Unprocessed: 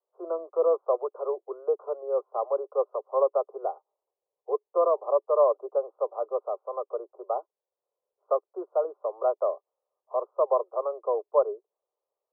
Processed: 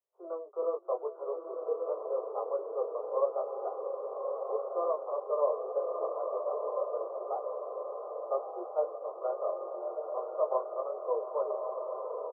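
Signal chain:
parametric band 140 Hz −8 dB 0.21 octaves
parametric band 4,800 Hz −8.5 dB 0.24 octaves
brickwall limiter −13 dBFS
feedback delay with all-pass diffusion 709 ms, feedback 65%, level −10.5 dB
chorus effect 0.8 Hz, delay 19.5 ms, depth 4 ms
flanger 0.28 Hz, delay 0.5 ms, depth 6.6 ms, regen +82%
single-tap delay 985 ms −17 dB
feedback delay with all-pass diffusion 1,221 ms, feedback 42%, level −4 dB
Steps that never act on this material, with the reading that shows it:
parametric band 140 Hz: nothing at its input below 320 Hz
parametric band 4,800 Hz: nothing at its input above 1,300 Hz

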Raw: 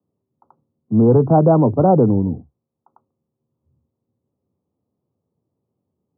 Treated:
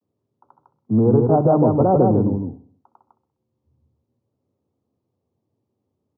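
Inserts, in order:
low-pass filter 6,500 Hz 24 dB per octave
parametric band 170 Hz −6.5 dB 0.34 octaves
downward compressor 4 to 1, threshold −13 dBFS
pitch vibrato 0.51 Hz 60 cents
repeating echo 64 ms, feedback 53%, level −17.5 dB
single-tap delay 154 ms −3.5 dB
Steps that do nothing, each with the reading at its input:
low-pass filter 6,500 Hz: nothing at its input above 1,100 Hz

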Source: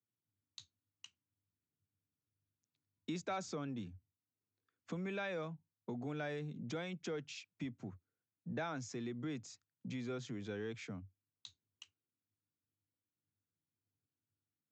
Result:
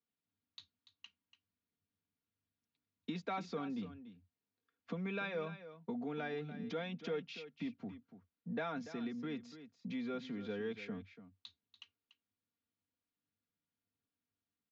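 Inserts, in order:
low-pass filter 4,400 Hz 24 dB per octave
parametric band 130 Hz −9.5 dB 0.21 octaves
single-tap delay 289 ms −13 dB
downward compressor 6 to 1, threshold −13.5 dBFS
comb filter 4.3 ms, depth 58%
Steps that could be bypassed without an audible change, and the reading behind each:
downward compressor, threshold −13.5 dBFS: peak of its input −29.0 dBFS

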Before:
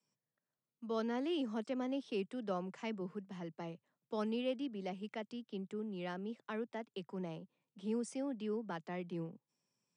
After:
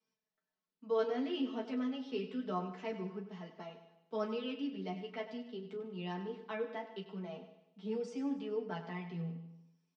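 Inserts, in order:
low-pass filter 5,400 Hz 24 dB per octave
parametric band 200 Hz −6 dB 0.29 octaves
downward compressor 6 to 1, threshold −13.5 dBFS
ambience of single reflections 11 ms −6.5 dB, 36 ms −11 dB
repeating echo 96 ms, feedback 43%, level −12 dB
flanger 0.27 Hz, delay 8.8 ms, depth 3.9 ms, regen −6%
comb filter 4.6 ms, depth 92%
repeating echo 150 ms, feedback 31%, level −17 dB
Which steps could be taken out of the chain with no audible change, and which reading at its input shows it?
downward compressor, threshold −13.5 dBFS: peak of its input −26.5 dBFS

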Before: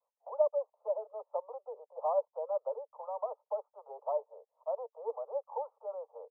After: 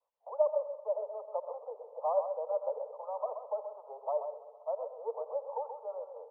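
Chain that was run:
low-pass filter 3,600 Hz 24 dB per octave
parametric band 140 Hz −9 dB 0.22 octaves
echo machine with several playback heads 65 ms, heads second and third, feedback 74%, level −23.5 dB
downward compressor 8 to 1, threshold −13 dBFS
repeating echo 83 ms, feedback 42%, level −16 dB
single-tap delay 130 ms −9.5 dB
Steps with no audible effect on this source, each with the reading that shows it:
low-pass filter 3,600 Hz: nothing at its input above 1,300 Hz
parametric band 140 Hz: nothing at its input below 400 Hz
downward compressor, threshold −13 dBFS: peak of its input −17.0 dBFS

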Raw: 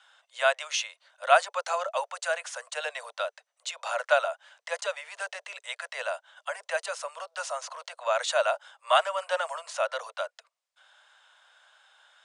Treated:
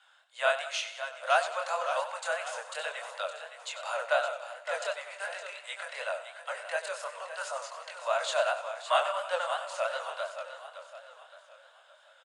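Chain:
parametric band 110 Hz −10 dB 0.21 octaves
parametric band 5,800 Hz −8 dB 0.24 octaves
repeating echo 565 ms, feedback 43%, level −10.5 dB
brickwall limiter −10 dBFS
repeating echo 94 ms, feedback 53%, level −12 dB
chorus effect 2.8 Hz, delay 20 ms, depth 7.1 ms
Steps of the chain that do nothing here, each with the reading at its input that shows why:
parametric band 110 Hz: nothing at its input below 430 Hz

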